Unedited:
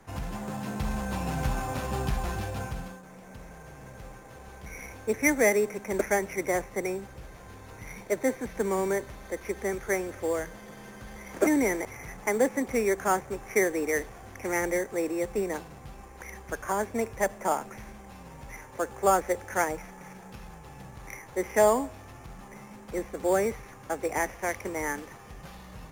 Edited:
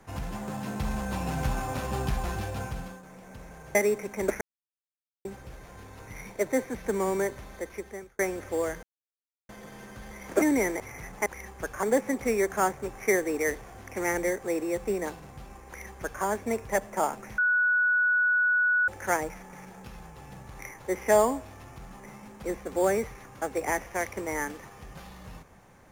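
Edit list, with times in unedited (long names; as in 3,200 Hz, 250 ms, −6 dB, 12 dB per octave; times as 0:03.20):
0:03.75–0:05.46: remove
0:06.12–0:06.96: silence
0:09.21–0:09.90: fade out
0:10.54: splice in silence 0.66 s
0:16.15–0:16.72: duplicate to 0:12.31
0:17.86–0:19.36: beep over 1,470 Hz −20.5 dBFS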